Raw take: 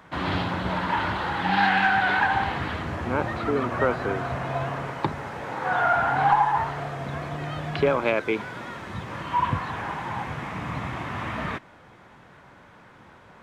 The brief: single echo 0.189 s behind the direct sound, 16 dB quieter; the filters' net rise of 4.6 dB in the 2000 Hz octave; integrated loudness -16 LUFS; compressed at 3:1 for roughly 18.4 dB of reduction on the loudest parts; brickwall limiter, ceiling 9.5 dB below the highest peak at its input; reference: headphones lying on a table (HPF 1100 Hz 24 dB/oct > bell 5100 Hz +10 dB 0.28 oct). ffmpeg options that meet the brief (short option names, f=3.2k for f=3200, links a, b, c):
-af "equalizer=f=2k:t=o:g=6.5,acompressor=threshold=-40dB:ratio=3,alimiter=level_in=5.5dB:limit=-24dB:level=0:latency=1,volume=-5.5dB,highpass=f=1.1k:w=0.5412,highpass=f=1.1k:w=1.3066,equalizer=f=5.1k:t=o:w=0.28:g=10,aecho=1:1:189:0.158,volume=26dB"